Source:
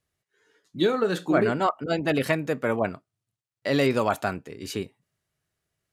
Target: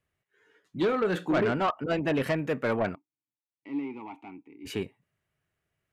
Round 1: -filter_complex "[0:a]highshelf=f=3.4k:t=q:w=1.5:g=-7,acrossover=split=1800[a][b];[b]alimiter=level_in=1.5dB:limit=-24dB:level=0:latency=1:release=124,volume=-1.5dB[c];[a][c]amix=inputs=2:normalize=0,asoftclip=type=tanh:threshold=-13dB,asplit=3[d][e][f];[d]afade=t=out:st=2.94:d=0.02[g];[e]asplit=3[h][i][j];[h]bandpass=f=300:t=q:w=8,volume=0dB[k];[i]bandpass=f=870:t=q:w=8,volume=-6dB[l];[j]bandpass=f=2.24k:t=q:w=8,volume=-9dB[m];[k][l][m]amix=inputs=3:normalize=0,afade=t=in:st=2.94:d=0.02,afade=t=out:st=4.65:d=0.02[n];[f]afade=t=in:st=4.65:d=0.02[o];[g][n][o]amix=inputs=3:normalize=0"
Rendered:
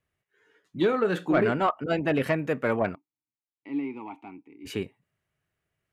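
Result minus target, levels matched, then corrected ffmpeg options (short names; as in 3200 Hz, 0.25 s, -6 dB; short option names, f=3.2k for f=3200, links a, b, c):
soft clip: distortion -9 dB
-filter_complex "[0:a]highshelf=f=3.4k:t=q:w=1.5:g=-7,acrossover=split=1800[a][b];[b]alimiter=level_in=1.5dB:limit=-24dB:level=0:latency=1:release=124,volume=-1.5dB[c];[a][c]amix=inputs=2:normalize=0,asoftclip=type=tanh:threshold=-20dB,asplit=3[d][e][f];[d]afade=t=out:st=2.94:d=0.02[g];[e]asplit=3[h][i][j];[h]bandpass=f=300:t=q:w=8,volume=0dB[k];[i]bandpass=f=870:t=q:w=8,volume=-6dB[l];[j]bandpass=f=2.24k:t=q:w=8,volume=-9dB[m];[k][l][m]amix=inputs=3:normalize=0,afade=t=in:st=2.94:d=0.02,afade=t=out:st=4.65:d=0.02[n];[f]afade=t=in:st=4.65:d=0.02[o];[g][n][o]amix=inputs=3:normalize=0"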